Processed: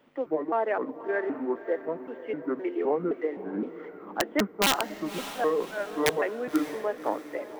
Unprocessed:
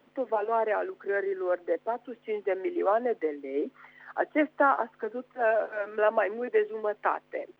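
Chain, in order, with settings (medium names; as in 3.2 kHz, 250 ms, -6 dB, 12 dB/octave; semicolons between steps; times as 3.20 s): pitch shift switched off and on -6 st, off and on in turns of 259 ms; integer overflow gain 14.5 dB; echo that smears into a reverb 576 ms, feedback 43%, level -12.5 dB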